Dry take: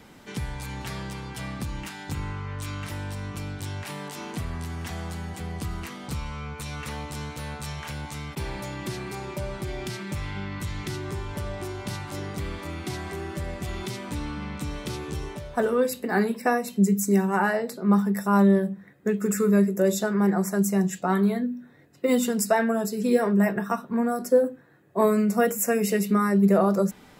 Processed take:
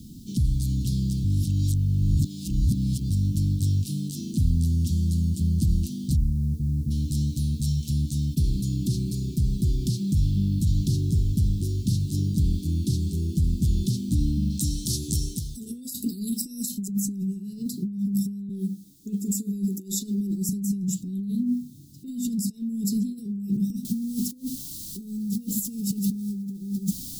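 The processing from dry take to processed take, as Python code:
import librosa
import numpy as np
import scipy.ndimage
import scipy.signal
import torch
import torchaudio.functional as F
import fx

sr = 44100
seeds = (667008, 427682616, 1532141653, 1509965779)

y = fx.lowpass(x, sr, hz=1200.0, slope=24, at=(6.15, 6.9), fade=0.02)
y = fx.bass_treble(y, sr, bass_db=-5, treble_db=13, at=(14.5, 16.88))
y = fx.highpass(y, sr, hz=330.0, slope=12, at=(18.49, 20.49))
y = fx.noise_floor_step(y, sr, seeds[0], at_s=23.85, before_db=-62, after_db=-41, tilt_db=0.0)
y = fx.edit(y, sr, fx.reverse_span(start_s=1.24, length_s=1.86), tone=tone)
y = fx.over_compress(y, sr, threshold_db=-30.0, ratio=-1.0)
y = scipy.signal.sosfilt(scipy.signal.cheby2(4, 50, [560.0, 2000.0], 'bandstop', fs=sr, output='sos'), y)
y = fx.low_shelf(y, sr, hz=410.0, db=8.5)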